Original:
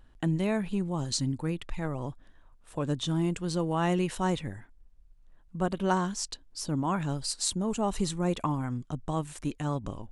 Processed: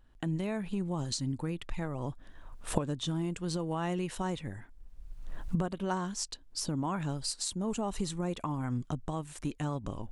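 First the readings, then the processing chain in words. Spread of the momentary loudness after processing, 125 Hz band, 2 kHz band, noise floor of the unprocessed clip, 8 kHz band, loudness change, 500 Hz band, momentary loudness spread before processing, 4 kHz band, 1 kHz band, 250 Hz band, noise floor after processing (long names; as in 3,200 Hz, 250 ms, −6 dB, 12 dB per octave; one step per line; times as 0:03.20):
6 LU, −3.5 dB, −5.0 dB, −58 dBFS, −3.0 dB, −4.0 dB, −5.0 dB, 8 LU, −3.0 dB, −5.0 dB, −4.0 dB, −54 dBFS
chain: camcorder AGC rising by 25 dB per second
level −6.5 dB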